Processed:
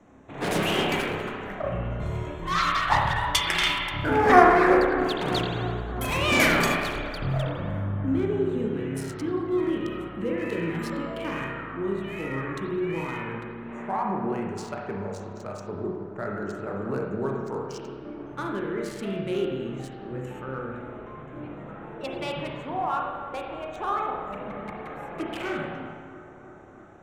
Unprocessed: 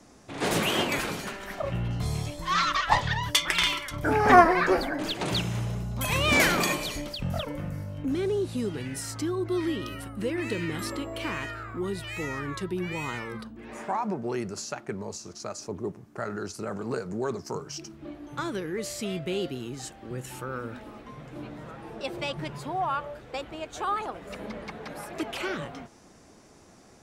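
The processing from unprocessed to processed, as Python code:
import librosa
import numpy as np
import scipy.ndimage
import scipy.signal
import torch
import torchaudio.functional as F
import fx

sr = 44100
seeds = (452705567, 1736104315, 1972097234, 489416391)

y = fx.wiener(x, sr, points=9)
y = fx.echo_bbd(y, sr, ms=319, stages=4096, feedback_pct=74, wet_db=-15.0)
y = fx.rev_spring(y, sr, rt60_s=1.3, pass_ms=(30, 52), chirp_ms=60, drr_db=-0.5)
y = y * 10.0 ** (-1.0 / 20.0)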